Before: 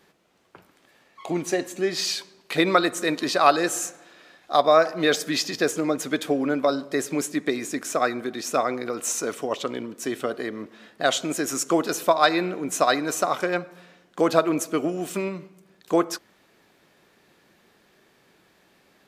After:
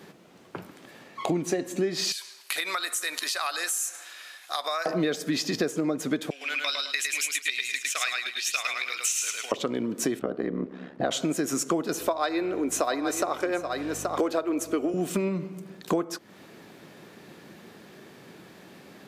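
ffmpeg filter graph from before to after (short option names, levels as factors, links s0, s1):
-filter_complex "[0:a]asettb=1/sr,asplit=3[s0][s1][s2];[s0]atrim=end=2.124[s3];[s1]atrim=start=2.12:end=4.86,asetpts=PTS-STARTPTS,afade=t=in:d=0.004:c=qsin,afade=t=out:st=2.736:d=0.004:c=qsin,highpass=1500,equalizer=f=11000:t=o:w=1:g=11.5,acompressor=threshold=0.0158:ratio=2.5:attack=3.2:release=140:knee=1:detection=peak[s4];[s2]atrim=start=4.856[s5];[s3][s4]acrossfade=d=0.004:c1=hsin:c2=qsin[s6];[s6][s5]acrossfade=d=0.004:c1=qsin:c2=hsin,asettb=1/sr,asplit=3[s7][s8][s9];[s7]atrim=end=6.304[s10];[s8]atrim=start=6.3:end=9.52,asetpts=PTS-STARTPTS,afade=t=in:d=0.004:c=qsin,afade=t=out:st=3.216:d=0.004:c=qsin,agate=range=0.0224:threshold=0.0398:ratio=3:release=100:detection=peak,highpass=f=2700:t=q:w=3.6,aecho=1:1:106|212|318|424:0.708|0.177|0.0442|0.0111,atrim=end_sample=142002[s11];[s9]atrim=start=9.516[s12];[s10][s11]acrossfade=d=0.004:c1=hsin:c2=qsin[s13];[s13][s12]acrossfade=d=0.004:c1=qsin:c2=hsin,asettb=1/sr,asplit=3[s14][s15][s16];[s14]atrim=end=10.194[s17];[s15]atrim=start=10.19:end=11.11,asetpts=PTS-STARTPTS,afade=t=in:d=0.004:c=qsin,afade=t=out:st=0.916:d=0.004:c=qsin,lowpass=f=1100:p=1,aeval=exprs='val(0)*sin(2*PI*34*n/s)':c=same[s18];[s16]atrim=start=11.106[s19];[s17][s18]acrossfade=d=0.004:c1=hsin:c2=qsin[s20];[s20][s19]acrossfade=d=0.004:c1=qsin:c2=hsin,asettb=1/sr,asplit=3[s21][s22][s23];[s21]atrim=end=11.994[s24];[s22]atrim=start=11.99:end=14.94,asetpts=PTS-STARTPTS,afade=t=in:d=0.004:c=qsin,afade=t=out:st=2.946:d=0.004:c=qsin,highpass=f=270:w=0.5412,highpass=f=270:w=1.3066,aeval=exprs='val(0)+0.00282*(sin(2*PI*50*n/s)+sin(2*PI*2*50*n/s)/2+sin(2*PI*3*50*n/s)/3+sin(2*PI*4*50*n/s)/4+sin(2*PI*5*50*n/s)/5)':c=same,aecho=1:1:827:0.211,atrim=end_sample=130095[s25];[s23]atrim=start=14.936[s26];[s24][s25]acrossfade=d=0.004:c1=hsin:c2=qsin[s27];[s27][s26]acrossfade=d=0.004:c1=qsin:c2=hsin,highpass=130,lowshelf=f=350:g=10.5,acompressor=threshold=0.0224:ratio=6,volume=2.51"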